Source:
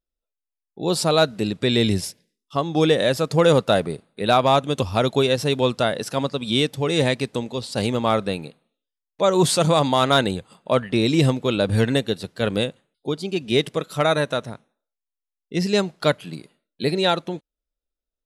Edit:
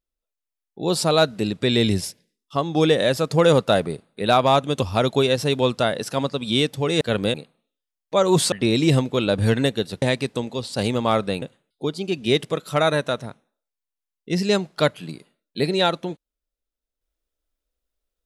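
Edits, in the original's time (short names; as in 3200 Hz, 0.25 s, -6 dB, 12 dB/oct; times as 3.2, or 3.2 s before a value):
7.01–8.41 swap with 12.33–12.66
9.59–10.83 cut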